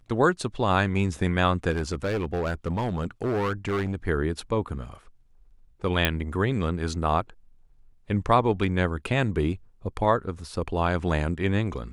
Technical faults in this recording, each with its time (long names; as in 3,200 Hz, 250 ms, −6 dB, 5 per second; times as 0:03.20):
0:01.70–0:03.95: clipping −22.5 dBFS
0:06.05: click −6 dBFS